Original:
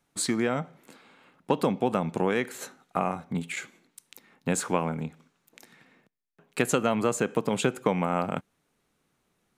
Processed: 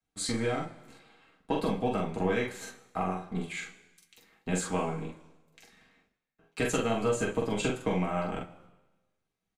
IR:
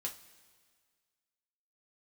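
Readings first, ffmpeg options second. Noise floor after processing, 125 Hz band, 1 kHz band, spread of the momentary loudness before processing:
−85 dBFS, −2.0 dB, −4.0 dB, 11 LU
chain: -filter_complex "[0:a]aemphasis=mode=reproduction:type=bsi,agate=range=-10dB:threshold=-59dB:ratio=16:detection=peak,highshelf=frequency=3000:gain=10.5,acrossover=split=400|1800[link_01][link_02][link_03];[link_01]aeval=exprs='max(val(0),0)':channel_layout=same[link_04];[link_04][link_02][link_03]amix=inputs=3:normalize=0,asplit=2[link_05][link_06];[link_06]adelay=44,volume=-3dB[link_07];[link_05][link_07]amix=inputs=2:normalize=0[link_08];[1:a]atrim=start_sample=2205,asetrate=70560,aresample=44100[link_09];[link_08][link_09]afir=irnorm=-1:irlink=0,volume=-1.5dB"

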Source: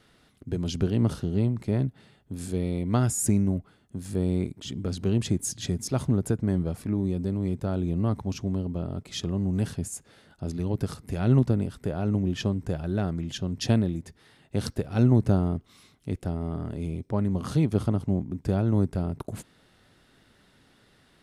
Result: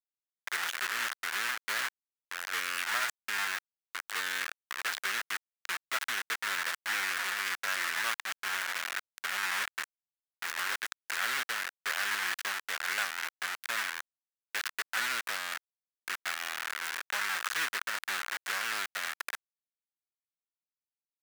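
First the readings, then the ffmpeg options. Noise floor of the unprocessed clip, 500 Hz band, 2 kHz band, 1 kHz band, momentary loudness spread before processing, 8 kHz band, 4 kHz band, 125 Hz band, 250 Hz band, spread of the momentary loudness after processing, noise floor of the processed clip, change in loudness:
−62 dBFS, −18.5 dB, +16.5 dB, +4.0 dB, 10 LU, −1.0 dB, +6.0 dB, below −40 dB, −32.5 dB, 7 LU, below −85 dBFS, −5.5 dB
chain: -filter_complex "[0:a]acrossover=split=3000[link_01][link_02];[link_02]acompressor=threshold=-51dB:ratio=4:attack=1:release=60[link_03];[link_01][link_03]amix=inputs=2:normalize=0,alimiter=limit=-16dB:level=0:latency=1:release=419,acrusher=bits=4:mix=0:aa=0.000001,highpass=frequency=1600:width_type=q:width=2.4,volume=1.5dB"

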